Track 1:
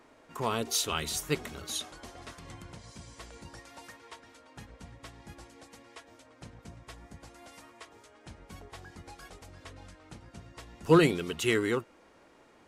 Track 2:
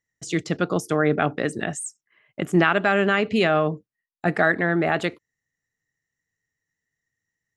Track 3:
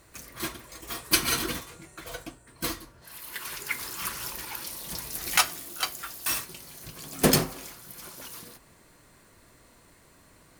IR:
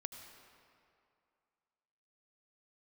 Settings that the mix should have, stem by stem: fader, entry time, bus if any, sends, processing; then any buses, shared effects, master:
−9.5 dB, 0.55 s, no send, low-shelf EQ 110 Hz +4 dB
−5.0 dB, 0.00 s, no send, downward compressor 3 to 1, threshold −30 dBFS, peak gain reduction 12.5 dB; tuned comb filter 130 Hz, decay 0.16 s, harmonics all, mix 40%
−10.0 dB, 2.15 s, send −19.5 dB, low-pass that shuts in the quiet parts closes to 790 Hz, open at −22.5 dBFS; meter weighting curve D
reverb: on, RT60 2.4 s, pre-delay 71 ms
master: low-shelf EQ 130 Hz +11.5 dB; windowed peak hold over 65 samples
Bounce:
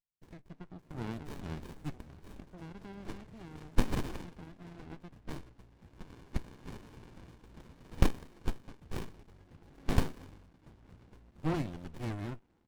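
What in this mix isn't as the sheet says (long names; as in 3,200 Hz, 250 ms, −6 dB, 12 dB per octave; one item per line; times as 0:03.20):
stem 2 −5.0 dB → −15.5 dB
stem 3: entry 2.15 s → 2.65 s
master: missing low-shelf EQ 130 Hz +11.5 dB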